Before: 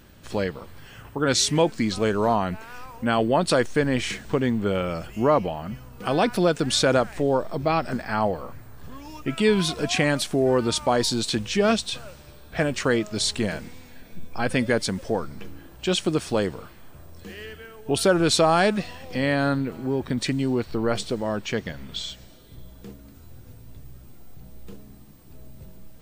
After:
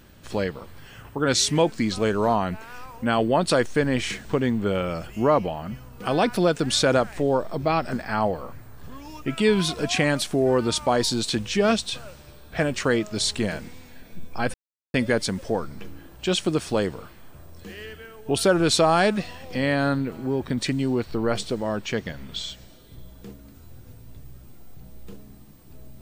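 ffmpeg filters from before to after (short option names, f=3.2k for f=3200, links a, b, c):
-filter_complex "[0:a]asplit=2[a][b];[a]atrim=end=14.54,asetpts=PTS-STARTPTS,afade=t=out:st=14.536:d=0.004:c=hsin,apad=pad_dur=0.4[c];[b]atrim=start=14.54,asetpts=PTS-STARTPTS,afade=t=in:d=0.004:c=hsin[d];[c][d]concat=n=2:v=0:a=1"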